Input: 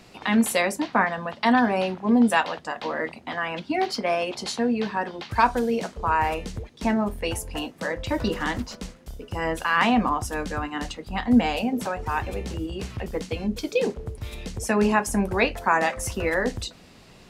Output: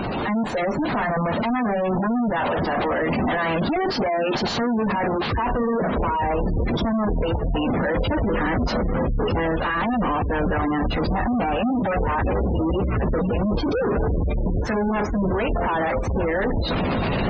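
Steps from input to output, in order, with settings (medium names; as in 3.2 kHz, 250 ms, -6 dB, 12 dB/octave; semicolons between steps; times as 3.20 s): jump at every zero crossing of -19.5 dBFS; level rider gain up to 13 dB; in parallel at -5 dB: sample-rate reducer 3.5 kHz, jitter 0%; on the sum: valve stage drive 20 dB, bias 0.35; distance through air 150 m; on a send: echo that smears into a reverb 950 ms, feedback 67%, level -16 dB; on the sum: spectral gate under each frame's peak -20 dB strong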